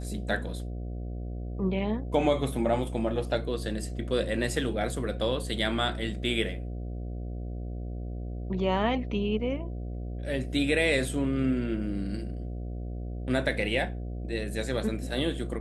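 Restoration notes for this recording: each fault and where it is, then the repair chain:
mains buzz 60 Hz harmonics 12 −35 dBFS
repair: hum removal 60 Hz, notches 12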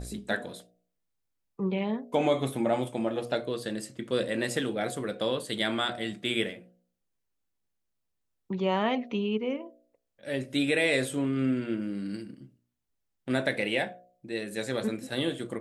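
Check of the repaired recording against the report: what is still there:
none of them is left

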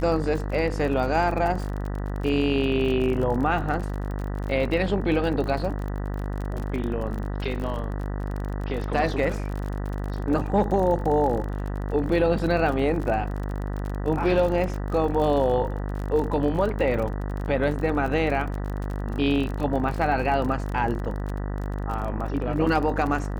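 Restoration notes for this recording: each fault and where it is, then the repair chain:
mains buzz 50 Hz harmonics 39 −29 dBFS
surface crackle 37 per second −30 dBFS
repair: click removal
hum removal 50 Hz, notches 39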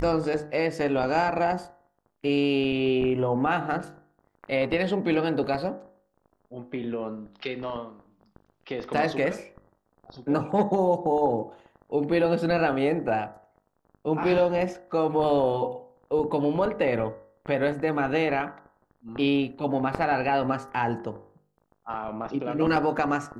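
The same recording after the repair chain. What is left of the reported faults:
none of them is left

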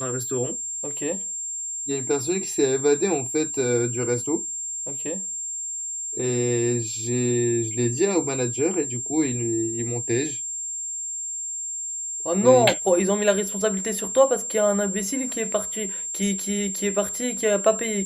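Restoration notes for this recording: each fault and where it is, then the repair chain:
whistle 7,400 Hz −28 dBFS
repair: notch filter 7,400 Hz, Q 30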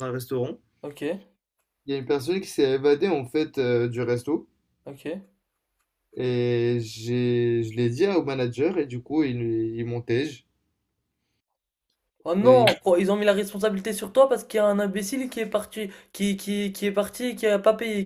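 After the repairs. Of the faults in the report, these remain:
none of them is left

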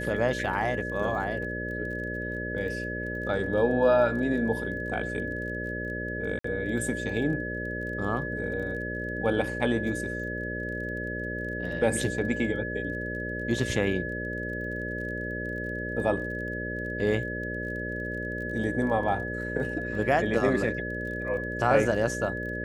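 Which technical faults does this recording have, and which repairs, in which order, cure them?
mains buzz 60 Hz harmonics 10 −35 dBFS
surface crackle 25 per second −39 dBFS
whistle 1,700 Hz −34 dBFS
0:06.39–0:06.44: drop-out 54 ms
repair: click removal
hum removal 60 Hz, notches 10
notch filter 1,700 Hz, Q 30
repair the gap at 0:06.39, 54 ms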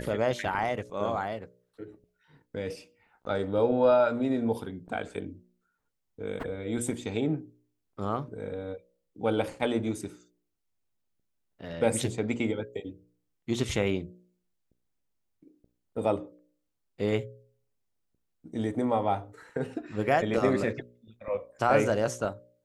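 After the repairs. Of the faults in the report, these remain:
none of them is left

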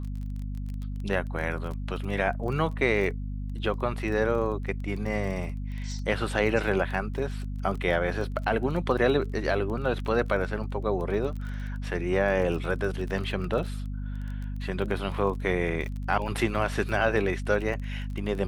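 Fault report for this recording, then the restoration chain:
surface crackle 20 per second −34 dBFS
mains hum 50 Hz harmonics 5 −33 dBFS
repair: click removal
hum removal 50 Hz, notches 5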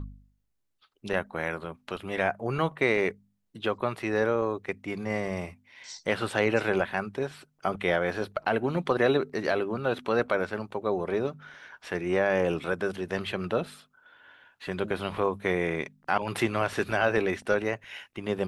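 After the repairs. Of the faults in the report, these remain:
none of them is left

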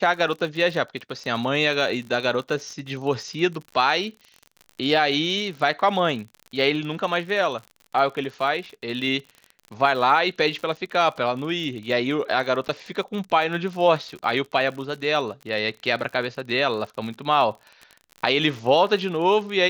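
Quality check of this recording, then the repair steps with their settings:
surface crackle 56 per second −32 dBFS
0:12.68–0:12.69: drop-out 9.2 ms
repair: click removal
repair the gap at 0:12.68, 9.2 ms

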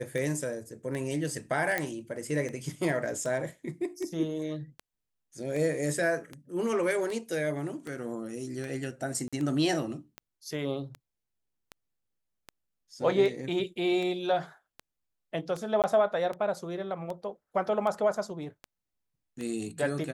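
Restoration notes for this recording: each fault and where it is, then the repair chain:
scratch tick 78 rpm −24 dBFS
0:01.78: click −14 dBFS
0:09.28–0:09.33: drop-out 46 ms
0:15.82–0:15.84: drop-out 18 ms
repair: click removal
repair the gap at 0:09.28, 46 ms
repair the gap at 0:15.82, 18 ms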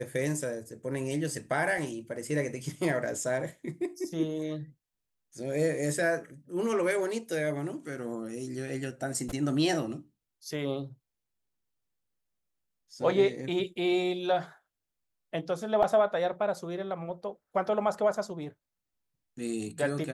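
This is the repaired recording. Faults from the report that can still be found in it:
0:01.78: click

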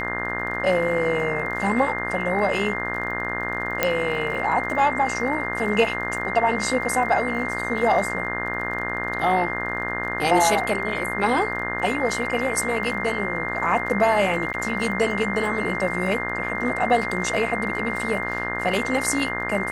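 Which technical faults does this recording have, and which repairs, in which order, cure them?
mains buzz 60 Hz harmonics 32 −30 dBFS
surface crackle 28 per second −33 dBFS
whistle 2,100 Hz −28 dBFS
0:03.83: click −4 dBFS
0:14.53–0:14.54: drop-out 9.6 ms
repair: click removal
hum removal 60 Hz, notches 32
notch filter 2,100 Hz, Q 30
repair the gap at 0:14.53, 9.6 ms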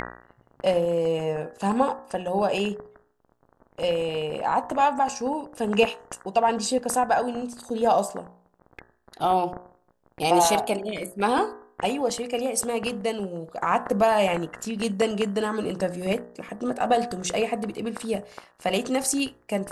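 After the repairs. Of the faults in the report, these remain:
none of them is left

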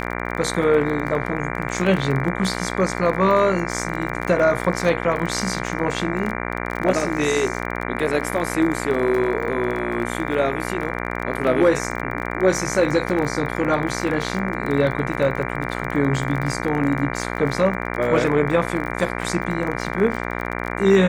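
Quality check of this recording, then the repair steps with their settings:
mains buzz 60 Hz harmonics 39 −27 dBFS
surface crackle 26 per second −26 dBFS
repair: click removal
hum removal 60 Hz, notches 39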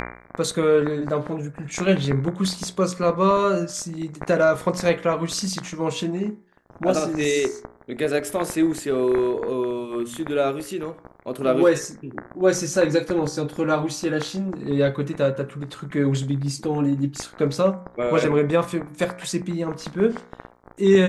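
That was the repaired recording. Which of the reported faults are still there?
none of them is left

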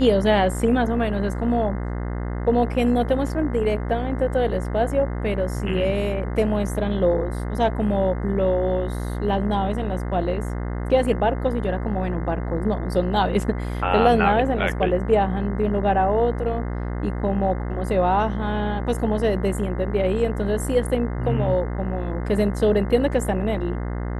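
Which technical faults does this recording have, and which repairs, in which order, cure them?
mains buzz 60 Hz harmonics 35 −27 dBFS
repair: hum removal 60 Hz, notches 35

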